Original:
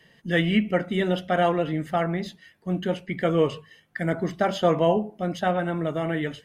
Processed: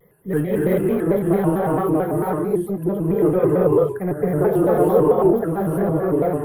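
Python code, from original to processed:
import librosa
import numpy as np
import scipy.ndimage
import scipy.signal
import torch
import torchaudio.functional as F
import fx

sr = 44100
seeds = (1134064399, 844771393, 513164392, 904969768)

p1 = fx.spec_dropout(x, sr, seeds[0], share_pct=25)
p2 = fx.peak_eq(p1, sr, hz=150.0, db=4.0, octaves=1.2)
p3 = fx.notch(p2, sr, hz=540.0, q=17.0)
p4 = p3 + fx.echo_single(p3, sr, ms=138, db=-21.5, dry=0)
p5 = fx.rev_gated(p4, sr, seeds[1], gate_ms=410, shape='rising', drr_db=-5.0)
p6 = 10.0 ** (-19.0 / 20.0) * (np.abs((p5 / 10.0 ** (-19.0 / 20.0) + 3.0) % 4.0 - 2.0) - 1.0)
p7 = p5 + F.gain(torch.from_numpy(p6), -8.5).numpy()
p8 = fx.curve_eq(p7, sr, hz=(130.0, 240.0, 410.0, 600.0, 1100.0, 2600.0, 3900.0, 6500.0, 11000.0), db=(0, -11, 10, -3, -2, -21, -26, -26, 15))
y = fx.vibrato_shape(p8, sr, shape='square', rate_hz=4.5, depth_cents=160.0)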